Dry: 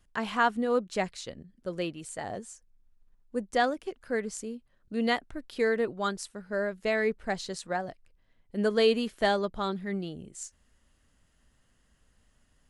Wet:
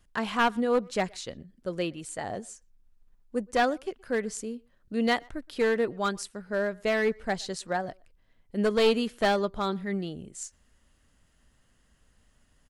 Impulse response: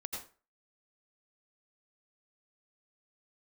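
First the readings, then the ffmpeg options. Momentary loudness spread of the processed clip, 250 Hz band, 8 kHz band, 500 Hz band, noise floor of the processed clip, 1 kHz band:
14 LU, +2.0 dB, +2.0 dB, +1.5 dB, -66 dBFS, +1.5 dB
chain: -filter_complex "[0:a]asplit=2[a][b];[b]adelay=120,highpass=300,lowpass=3.4k,asoftclip=type=hard:threshold=-21.5dB,volume=-26dB[c];[a][c]amix=inputs=2:normalize=0,aeval=exprs='clip(val(0),-1,0.0708)':c=same,volume=2dB"

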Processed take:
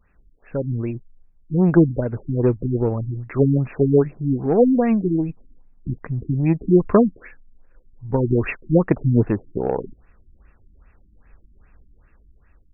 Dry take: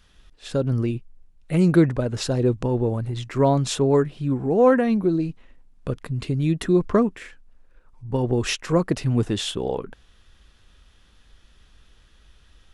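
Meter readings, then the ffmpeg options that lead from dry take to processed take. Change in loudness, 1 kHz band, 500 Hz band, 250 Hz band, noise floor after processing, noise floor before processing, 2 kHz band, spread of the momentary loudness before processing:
+2.0 dB, -2.0 dB, +1.5 dB, +3.0 dB, -56 dBFS, -56 dBFS, -2.0 dB, 11 LU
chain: -af "dynaudnorm=f=660:g=5:m=6dB,aeval=exprs='0.794*(cos(1*acos(clip(val(0)/0.794,-1,1)))-cos(1*PI/2))+0.0891*(cos(4*acos(clip(val(0)/0.794,-1,1)))-cos(4*PI/2))+0.0631*(cos(6*acos(clip(val(0)/0.794,-1,1)))-cos(6*PI/2))+0.0282*(cos(7*acos(clip(val(0)/0.794,-1,1)))-cos(7*PI/2))':c=same,afftfilt=real='re*lt(b*sr/1024,330*pow(2800/330,0.5+0.5*sin(2*PI*2.5*pts/sr)))':imag='im*lt(b*sr/1024,330*pow(2800/330,0.5+0.5*sin(2*PI*2.5*pts/sr)))':win_size=1024:overlap=0.75"

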